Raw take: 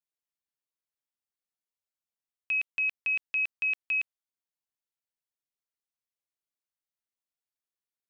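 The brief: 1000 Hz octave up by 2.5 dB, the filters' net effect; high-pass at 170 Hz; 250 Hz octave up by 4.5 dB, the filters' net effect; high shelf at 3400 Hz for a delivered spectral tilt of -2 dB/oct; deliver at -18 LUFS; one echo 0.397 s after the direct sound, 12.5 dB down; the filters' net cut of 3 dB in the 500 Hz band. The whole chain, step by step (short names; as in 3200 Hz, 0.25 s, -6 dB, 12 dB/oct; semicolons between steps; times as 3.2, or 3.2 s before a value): HPF 170 Hz; bell 250 Hz +9 dB; bell 500 Hz -8 dB; bell 1000 Hz +4 dB; high shelf 3400 Hz +5.5 dB; echo 0.397 s -12.5 dB; gain +8 dB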